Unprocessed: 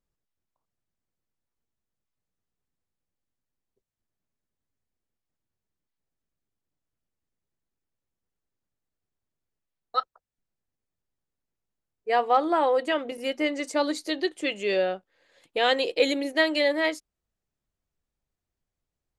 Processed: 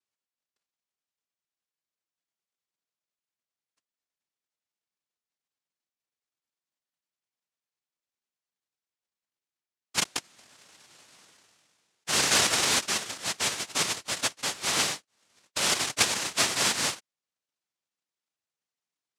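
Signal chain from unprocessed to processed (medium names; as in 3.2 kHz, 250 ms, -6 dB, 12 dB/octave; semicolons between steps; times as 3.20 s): noise-vocoded speech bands 1; 9.99–12.47 s: decay stretcher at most 26 dB/s; trim -3 dB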